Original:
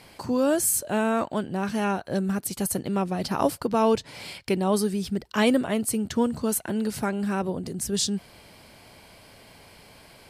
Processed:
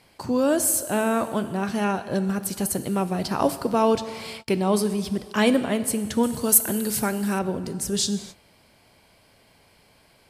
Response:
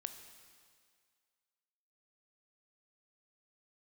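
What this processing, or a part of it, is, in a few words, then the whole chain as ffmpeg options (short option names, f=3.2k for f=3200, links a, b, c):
keyed gated reverb: -filter_complex "[0:a]asplit=3[a][b][c];[1:a]atrim=start_sample=2205[d];[b][d]afir=irnorm=-1:irlink=0[e];[c]apad=whole_len=454225[f];[e][f]sidechaingate=range=-33dB:threshold=-43dB:ratio=16:detection=peak,volume=8.5dB[g];[a][g]amix=inputs=2:normalize=0,asettb=1/sr,asplit=3[h][i][j];[h]atrim=end=6.234[k];[i]atrim=start=6.23:end=7.39,asetpts=PTS-STARTPTS,afade=t=in:d=0.004:c=qsin,afade=t=out:st=1.156:d=0.004:c=qsin,aemphasis=mode=production:type=50kf[l];[j]atrim=start=7.386[m];[k][l]acrossfade=d=0.004:c1=hsin:c2=qsin[n];[n][m]acrossfade=d=0.004:c1=qsin:c2=hsin,volume=-7.5dB"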